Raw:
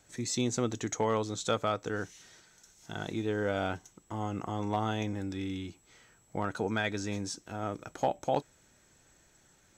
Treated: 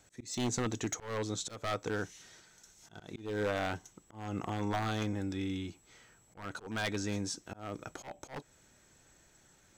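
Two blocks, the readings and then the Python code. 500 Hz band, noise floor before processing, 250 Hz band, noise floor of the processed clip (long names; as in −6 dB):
−5.5 dB, −65 dBFS, −3.0 dB, −65 dBFS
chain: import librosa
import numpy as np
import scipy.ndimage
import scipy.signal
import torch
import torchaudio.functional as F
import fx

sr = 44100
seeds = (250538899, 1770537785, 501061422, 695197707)

y = 10.0 ** (-25.0 / 20.0) * (np.abs((x / 10.0 ** (-25.0 / 20.0) + 3.0) % 4.0 - 2.0) - 1.0)
y = fx.auto_swell(y, sr, attack_ms=252.0)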